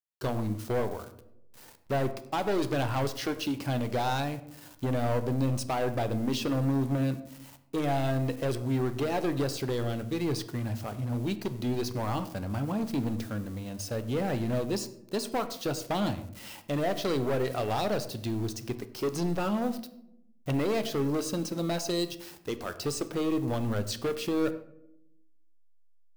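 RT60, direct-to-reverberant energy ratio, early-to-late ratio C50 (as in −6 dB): non-exponential decay, 10.0 dB, 13.5 dB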